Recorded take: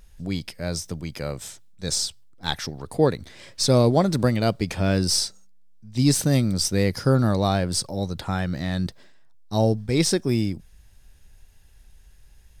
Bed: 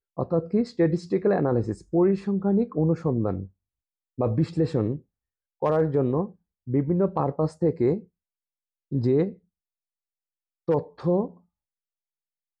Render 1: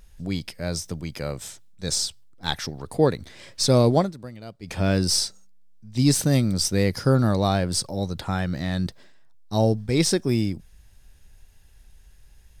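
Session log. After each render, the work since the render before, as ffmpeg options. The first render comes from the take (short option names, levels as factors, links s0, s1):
-filter_complex "[0:a]asplit=3[s0][s1][s2];[s0]atrim=end=4.13,asetpts=PTS-STARTPTS,afade=t=out:st=3.98:d=0.15:silence=0.125893[s3];[s1]atrim=start=4.13:end=4.62,asetpts=PTS-STARTPTS,volume=0.126[s4];[s2]atrim=start=4.62,asetpts=PTS-STARTPTS,afade=t=in:d=0.15:silence=0.125893[s5];[s3][s4][s5]concat=n=3:v=0:a=1"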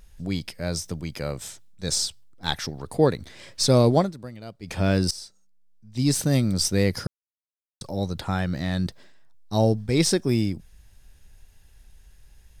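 -filter_complex "[0:a]asplit=4[s0][s1][s2][s3];[s0]atrim=end=5.11,asetpts=PTS-STARTPTS,afade=t=out:st=5.106:d=0.004:c=hsin:silence=0.112202[s4];[s1]atrim=start=5.11:end=7.07,asetpts=PTS-STARTPTS,afade=t=in:d=1.45:silence=0.112202,afade=t=out:st=1.956:d=0.004:c=hsin[s5];[s2]atrim=start=7.07:end=7.81,asetpts=PTS-STARTPTS,volume=0[s6];[s3]atrim=start=7.81,asetpts=PTS-STARTPTS,afade=t=in:d=0.004:c=hsin[s7];[s4][s5][s6][s7]concat=n=4:v=0:a=1"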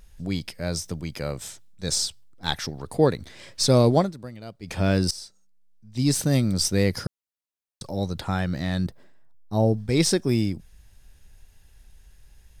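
-filter_complex "[0:a]asettb=1/sr,asplit=3[s0][s1][s2];[s0]atrim=end=8.864[s3];[s1]atrim=start=8.86:end=9.74,asetpts=PTS-STARTPTS,afade=t=in:d=0.004:c=qsin,afade=t=out:st=0.876:d=0.004:c=qsin,equalizer=f=4600:w=0.44:g=-11.5[s4];[s2]atrim=start=9.736[s5];[s3][s4]acrossfade=d=0.004:c1=hsin:c2=qsin[s6];[s6][s5]acrossfade=d=0.004:c1=qsin:c2=hsin"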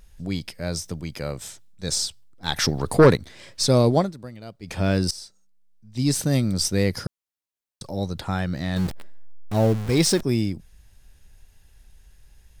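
-filter_complex "[0:a]asettb=1/sr,asplit=3[s0][s1][s2];[s0]atrim=end=2.564[s3];[s1]atrim=start=2.56:end=3.17,asetpts=PTS-STARTPTS,afade=t=in:d=0.004:c=qsin,afade=t=out:st=0.606:d=0.004:c=qsin,aeval=exprs='0.473*sin(PI/2*2*val(0)/0.473)':c=same[s4];[s2]atrim=start=3.166[s5];[s3][s4]acrossfade=d=0.004:c1=hsin:c2=qsin[s6];[s6][s5]acrossfade=d=0.004:c1=qsin:c2=hsin,asettb=1/sr,asplit=3[s7][s8][s9];[s7]atrim=end=8.764[s10];[s8]atrim=start=8.76:end=10.23,asetpts=PTS-STARTPTS,afade=t=in:d=0.004:c=qsin,afade=t=out:st=1.466:d=0.004:c=qsin,aeval=exprs='val(0)+0.5*0.0422*sgn(val(0))':c=same[s11];[s9]atrim=start=10.226[s12];[s10][s11]acrossfade=d=0.004:c1=hsin:c2=qsin[s13];[s13][s12]acrossfade=d=0.004:c1=qsin:c2=hsin"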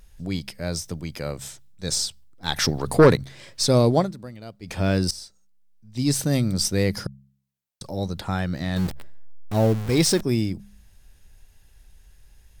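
-af "equalizer=f=16000:t=o:w=0.26:g=6,bandreject=f=67.6:t=h:w=4,bandreject=f=135.2:t=h:w=4,bandreject=f=202.8:t=h:w=4"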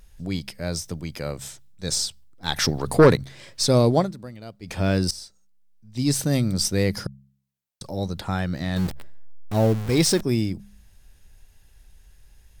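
-af anull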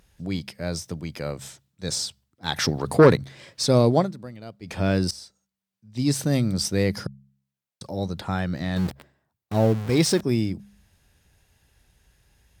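-af "highpass=79,highshelf=f=5400:g=-5.5"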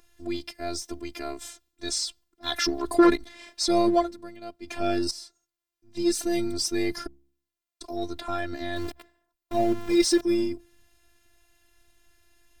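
-filter_complex "[0:a]afftfilt=real='hypot(re,im)*cos(PI*b)':imag='0':win_size=512:overlap=0.75,asplit=2[s0][s1];[s1]aeval=exprs='clip(val(0),-1,0.0422)':c=same,volume=0.501[s2];[s0][s2]amix=inputs=2:normalize=0"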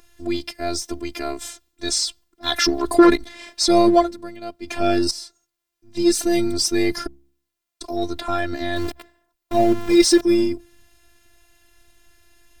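-af "volume=2.24,alimiter=limit=0.891:level=0:latency=1"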